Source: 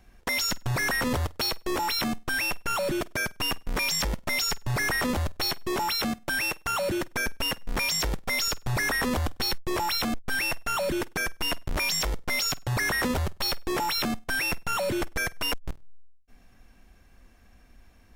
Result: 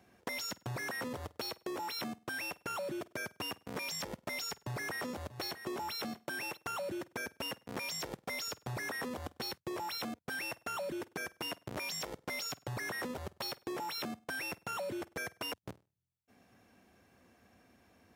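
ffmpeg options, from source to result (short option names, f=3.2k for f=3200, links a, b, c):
-filter_complex "[0:a]asettb=1/sr,asplit=3[a][b][c];[a]atrim=end=4.404[d];[b]atrim=start=4.4:end=6.57,asetpts=PTS-STARTPTS,afade=t=in:d=0.004:c=qsin,afade=t=out:st=2.166:d=0.004:c=qsin,aecho=1:1:637:0.188,atrim=end_sample=95697[e];[c]atrim=start=6.566[f];[d][e]acrossfade=d=0.004:c1=hsin:c2=qsin[g];[g][f]acrossfade=d=0.004:c1=qsin:c2=hsin,highpass=f=90:w=0.5412,highpass=f=90:w=1.3066,equalizer=f=480:w=0.63:g=5.5,acompressor=threshold=-32dB:ratio=6,volume=-5.5dB"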